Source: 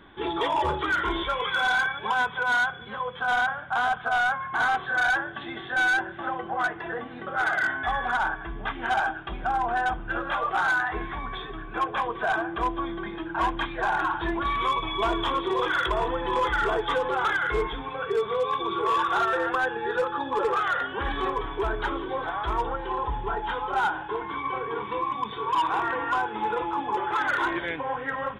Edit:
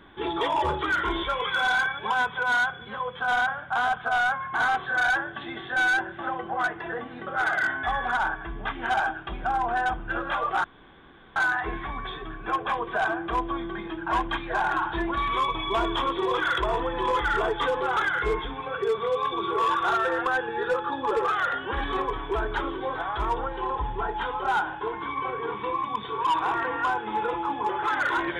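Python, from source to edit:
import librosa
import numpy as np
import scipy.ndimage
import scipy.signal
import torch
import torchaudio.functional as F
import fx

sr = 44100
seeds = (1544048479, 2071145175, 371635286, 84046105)

y = fx.edit(x, sr, fx.insert_room_tone(at_s=10.64, length_s=0.72), tone=tone)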